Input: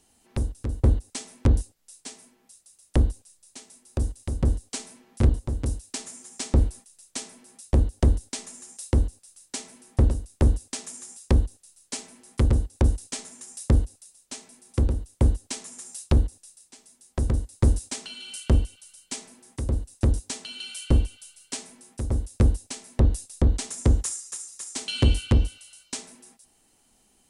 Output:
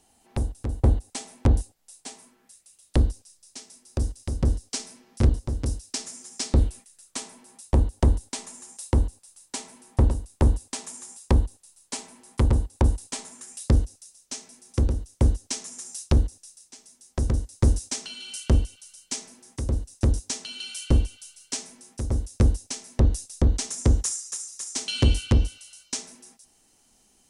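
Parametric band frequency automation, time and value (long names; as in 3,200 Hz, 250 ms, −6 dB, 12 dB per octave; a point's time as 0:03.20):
parametric band +6.5 dB 0.55 octaves
0:02.09 770 Hz
0:03.07 5,300 Hz
0:06.44 5,300 Hz
0:07.24 930 Hz
0:13.33 930 Hz
0:13.74 5,800 Hz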